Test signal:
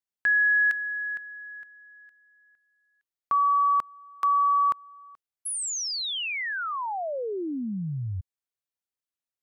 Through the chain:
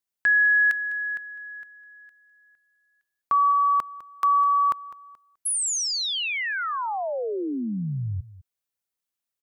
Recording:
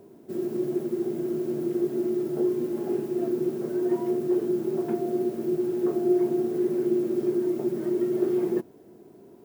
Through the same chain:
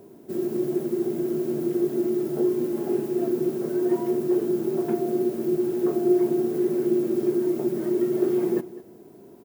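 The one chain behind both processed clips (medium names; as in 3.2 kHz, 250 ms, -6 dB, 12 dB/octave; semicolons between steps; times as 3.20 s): treble shelf 7.9 kHz +5 dB; on a send: delay 204 ms -17 dB; on the sum: trim +2.5 dB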